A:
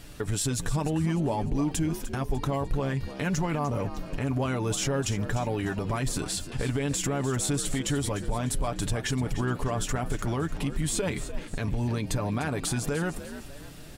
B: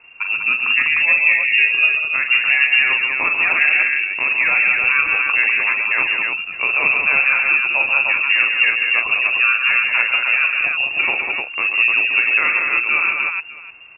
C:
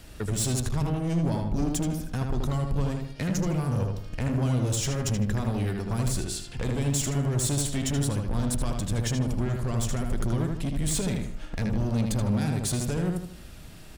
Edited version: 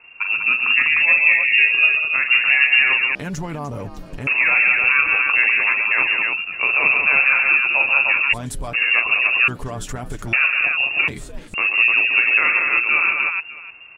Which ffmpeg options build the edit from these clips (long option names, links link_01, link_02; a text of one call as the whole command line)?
ffmpeg -i take0.wav -i take1.wav -filter_complex "[0:a]asplit=4[link_01][link_02][link_03][link_04];[1:a]asplit=5[link_05][link_06][link_07][link_08][link_09];[link_05]atrim=end=3.152[link_10];[link_01]atrim=start=3.148:end=4.272[link_11];[link_06]atrim=start=4.268:end=8.34[link_12];[link_02]atrim=start=8.32:end=8.75[link_13];[link_07]atrim=start=8.73:end=9.482[link_14];[link_03]atrim=start=9.478:end=10.332[link_15];[link_08]atrim=start=10.328:end=11.082[link_16];[link_04]atrim=start=11.078:end=11.542[link_17];[link_09]atrim=start=11.538[link_18];[link_10][link_11]acrossfade=duration=0.004:curve1=hsin:curve2=hsin[link_19];[link_19][link_12]acrossfade=duration=0.004:curve1=hsin:curve2=hsin[link_20];[link_20][link_13]acrossfade=duration=0.02:curve1=tri:curve2=tri[link_21];[link_21][link_14]acrossfade=duration=0.02:curve1=tri:curve2=tri[link_22];[link_22][link_15]acrossfade=duration=0.004:curve1=hsin:curve2=hsin[link_23];[link_23][link_16]acrossfade=duration=0.004:curve1=hsin:curve2=hsin[link_24];[link_24][link_17]acrossfade=duration=0.004:curve1=hsin:curve2=hsin[link_25];[link_25][link_18]acrossfade=duration=0.004:curve1=hsin:curve2=hsin" out.wav